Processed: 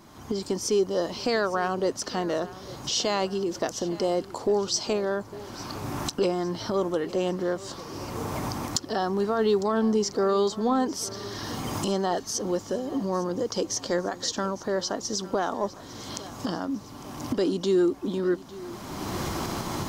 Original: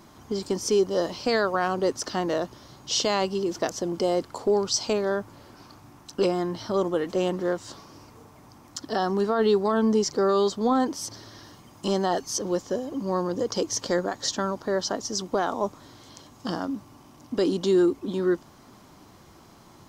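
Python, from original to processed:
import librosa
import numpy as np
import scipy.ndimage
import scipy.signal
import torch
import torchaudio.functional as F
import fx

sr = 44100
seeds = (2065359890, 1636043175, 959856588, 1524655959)

p1 = fx.recorder_agc(x, sr, target_db=-20.0, rise_db_per_s=28.0, max_gain_db=30)
p2 = 10.0 ** (-14.0 / 20.0) * np.tanh(p1 / 10.0 ** (-14.0 / 20.0))
p3 = p1 + (p2 * 10.0 ** (-9.0 / 20.0))
p4 = fx.echo_feedback(p3, sr, ms=854, feedback_pct=52, wet_db=-18)
y = p4 * 10.0 ** (-4.0 / 20.0)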